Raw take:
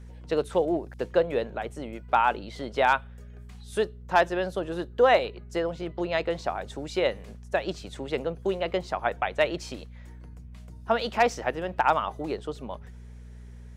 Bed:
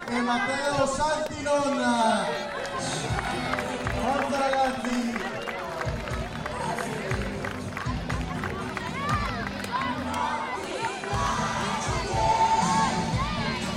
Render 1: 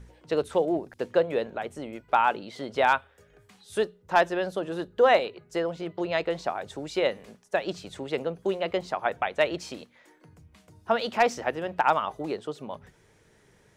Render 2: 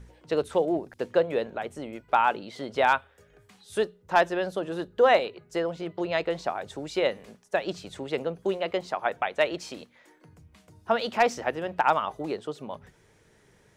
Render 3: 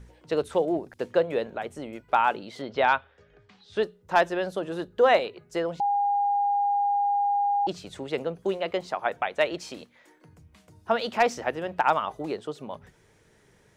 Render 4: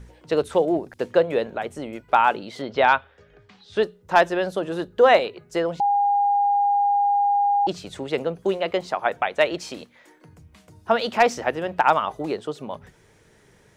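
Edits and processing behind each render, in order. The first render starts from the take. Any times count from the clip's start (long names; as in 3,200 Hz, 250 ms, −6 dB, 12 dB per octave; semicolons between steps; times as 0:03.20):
hum removal 60 Hz, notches 4
0:08.58–0:09.77: low-shelf EQ 120 Hz −9 dB
0:02.62–0:03.83: low-pass filter 5,100 Hz 24 dB per octave; 0:05.80–0:07.67: beep over 811 Hz −21 dBFS
level +4.5 dB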